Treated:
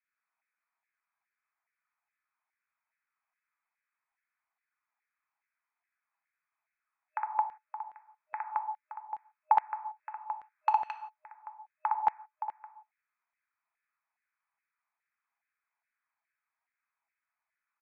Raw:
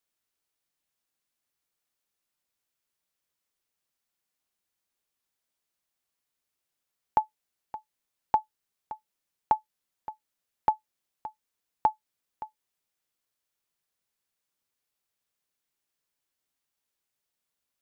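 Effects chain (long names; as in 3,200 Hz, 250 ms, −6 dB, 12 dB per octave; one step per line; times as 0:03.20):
brick-wall band-pass 620–2,600 Hz
0:09.56–0:10.69: mid-hump overdrive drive 14 dB, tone 1,900 Hz, clips at −11 dBFS
on a send: loudspeakers that aren't time-aligned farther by 21 metres −3 dB, 75 metres −3 dB
on the sum: reverb whose tail is shaped and stops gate 200 ms falling, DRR 7 dB
auto-filter high-pass saw down 2.4 Hz 790–1,900 Hz
in parallel at −1.5 dB: downward compressor, threshold −31 dBFS, peak gain reduction 17.5 dB
on the sum: level −8 dB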